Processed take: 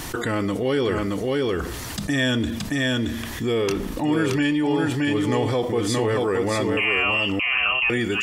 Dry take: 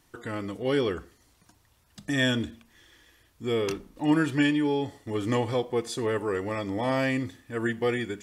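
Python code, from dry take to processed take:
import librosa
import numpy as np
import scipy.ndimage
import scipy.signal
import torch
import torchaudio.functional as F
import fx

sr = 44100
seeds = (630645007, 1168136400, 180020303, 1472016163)

p1 = fx.freq_invert(x, sr, carrier_hz=3000, at=(6.77, 7.9))
p2 = p1 + fx.echo_single(p1, sr, ms=623, db=-4.0, dry=0)
p3 = fx.env_flatten(p2, sr, amount_pct=70)
y = p3 * librosa.db_to_amplitude(-1.0)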